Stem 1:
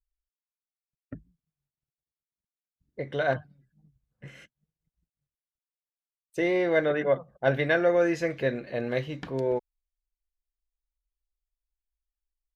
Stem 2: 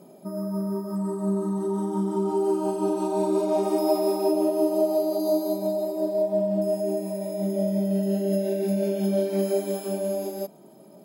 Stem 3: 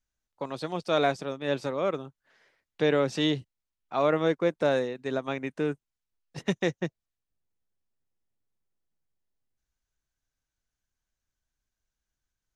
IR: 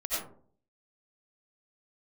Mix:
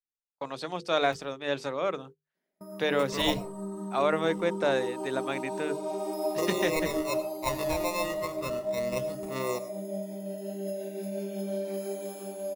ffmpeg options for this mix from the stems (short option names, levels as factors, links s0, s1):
-filter_complex "[0:a]acrusher=samples=28:mix=1:aa=0.000001,aphaser=in_gain=1:out_gain=1:delay=1.3:decay=0.49:speed=0.32:type=triangular,adynamicequalizer=threshold=0.0112:dfrequency=2000:dqfactor=0.7:tfrequency=2000:tqfactor=0.7:attack=5:release=100:ratio=0.375:range=2:mode=cutabove:tftype=highshelf,volume=0.473,asplit=2[s0][s1];[s1]volume=0.119[s2];[1:a]adelay=2350,volume=0.398,asplit=2[s3][s4];[s4]volume=0.211[s5];[2:a]bandreject=f=50:t=h:w=6,bandreject=f=100:t=h:w=6,bandreject=f=150:t=h:w=6,bandreject=f=200:t=h:w=6,bandreject=f=250:t=h:w=6,bandreject=f=300:t=h:w=6,bandreject=f=350:t=h:w=6,bandreject=f=400:t=h:w=6,bandreject=f=450:t=h:w=6,bandreject=f=500:t=h:w=6,volume=1.19[s6];[3:a]atrim=start_sample=2205[s7];[s2][s5]amix=inputs=2:normalize=0[s8];[s8][s7]afir=irnorm=-1:irlink=0[s9];[s0][s3][s6][s9]amix=inputs=4:normalize=0,agate=range=0.0501:threshold=0.00708:ratio=16:detection=peak,lowshelf=f=490:g=-7,bandreject=f=50:t=h:w=6,bandreject=f=100:t=h:w=6,bandreject=f=150:t=h:w=6"